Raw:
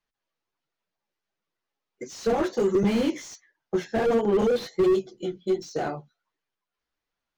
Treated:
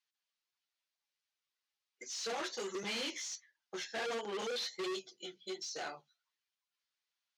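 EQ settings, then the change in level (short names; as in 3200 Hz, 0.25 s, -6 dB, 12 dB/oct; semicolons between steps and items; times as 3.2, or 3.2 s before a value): band-pass 4600 Hz, Q 0.84; +1.5 dB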